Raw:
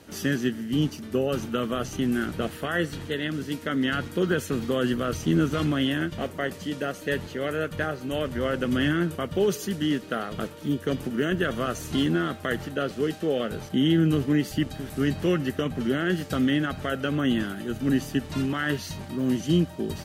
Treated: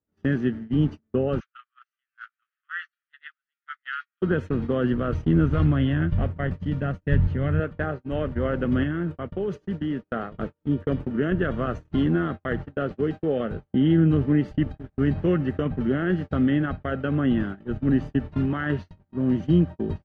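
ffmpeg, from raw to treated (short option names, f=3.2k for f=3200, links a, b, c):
-filter_complex "[0:a]asplit=3[a][b][c];[a]afade=t=out:st=1.39:d=0.02[d];[b]asuperpass=centerf=2900:order=20:qfactor=0.54,afade=t=in:st=1.39:d=0.02,afade=t=out:st=4.21:d=0.02[e];[c]afade=t=in:st=4.21:d=0.02[f];[d][e][f]amix=inputs=3:normalize=0,asettb=1/sr,asplit=3[g][h][i];[g]atrim=end=5.104[j];[h]atrim=start=5.1:end=7.6,asetpts=PTS-STARTPTS,afade=t=in:d=0.004:c=qsin,afade=t=out:st=2.496:d=0.004:c=qsin,asubboost=boost=10.5:cutoff=150[k];[i]atrim=start=7.596[l];[j][k]acrossfade=d=0.004:c1=hsin:c2=qsin[m];[m][l]acrossfade=d=0.004:c1=qsin:c2=hsin,asettb=1/sr,asplit=3[n][o][p];[n]atrim=end=8.834[q];[o]atrim=start=8.83:end=10.07,asetpts=PTS-STARTPTS,afade=t=in:d=0.004:c=qsin,afade=t=out:st=1.236:d=0.004:c=qsin,acompressor=threshold=-25dB:ratio=4:attack=3.2:release=140:knee=1:detection=peak[r];[p]atrim=start=10.066[s];[q][r]acrossfade=d=0.004:c1=hsin:c2=qsin[t];[t][s]acrossfade=d=0.004:c1=qsin:c2=hsin,agate=range=-40dB:threshold=-31dB:ratio=16:detection=peak,lowpass=1.8k,lowshelf=f=120:g=10.5"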